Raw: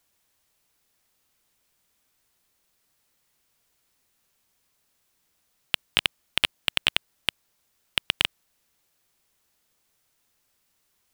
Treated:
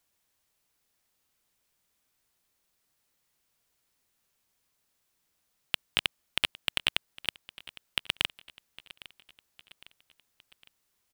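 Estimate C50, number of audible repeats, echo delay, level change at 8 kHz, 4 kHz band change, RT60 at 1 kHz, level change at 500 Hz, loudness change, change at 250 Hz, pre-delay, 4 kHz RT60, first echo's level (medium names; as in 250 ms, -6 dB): no reverb, 3, 808 ms, -5.0 dB, -5.0 dB, no reverb, -5.0 dB, -5.0 dB, -5.0 dB, no reverb, no reverb, -19.5 dB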